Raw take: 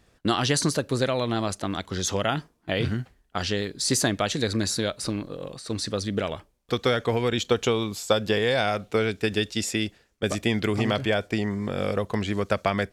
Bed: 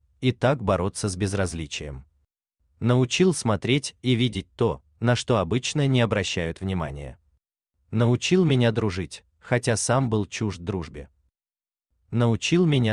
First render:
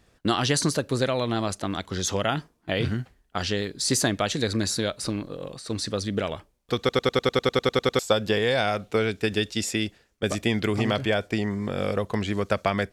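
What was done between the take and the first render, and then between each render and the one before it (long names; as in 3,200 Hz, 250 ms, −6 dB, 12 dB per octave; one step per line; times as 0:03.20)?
0:06.79: stutter in place 0.10 s, 12 plays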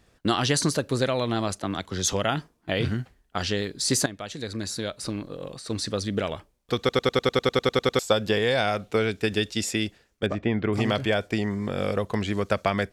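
0:01.59–0:02.13: multiband upward and downward expander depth 40%
0:04.06–0:05.56: fade in, from −14 dB
0:10.26–0:10.73: low-pass filter 1,800 Hz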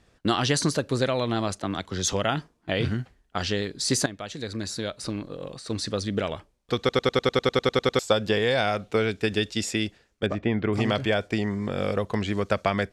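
Bessel low-pass filter 9,100 Hz, order 2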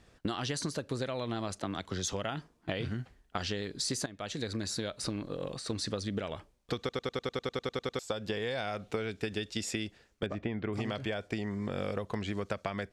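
downward compressor 10 to 1, threshold −31 dBFS, peak gain reduction 15.5 dB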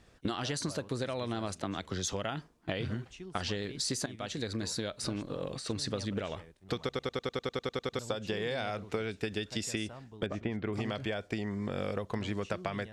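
mix in bed −27 dB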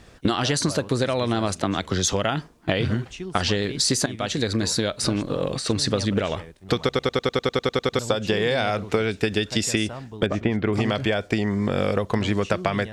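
level +12 dB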